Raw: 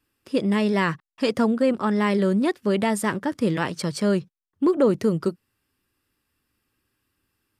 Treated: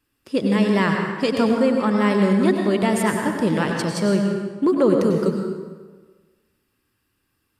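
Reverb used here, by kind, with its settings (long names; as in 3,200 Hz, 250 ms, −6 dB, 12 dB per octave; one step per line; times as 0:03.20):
dense smooth reverb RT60 1.4 s, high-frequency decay 0.7×, pre-delay 85 ms, DRR 2 dB
level +1 dB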